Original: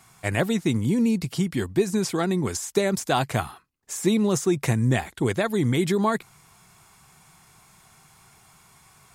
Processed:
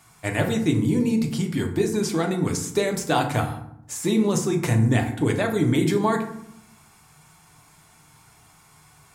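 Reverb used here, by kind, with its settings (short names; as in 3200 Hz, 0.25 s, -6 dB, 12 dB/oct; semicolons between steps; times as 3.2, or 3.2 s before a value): FDN reverb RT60 0.72 s, low-frequency decay 1.55×, high-frequency decay 0.55×, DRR 2.5 dB; gain -1 dB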